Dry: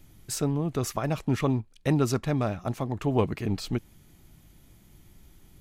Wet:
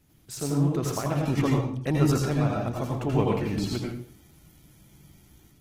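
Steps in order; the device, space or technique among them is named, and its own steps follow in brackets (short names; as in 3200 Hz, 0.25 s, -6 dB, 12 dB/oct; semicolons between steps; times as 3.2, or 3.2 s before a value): far-field microphone of a smart speaker (reverb RT60 0.50 s, pre-delay 79 ms, DRR -1.5 dB; HPF 85 Hz 6 dB/oct; AGC gain up to 4 dB; gain -5.5 dB; Opus 16 kbps 48000 Hz)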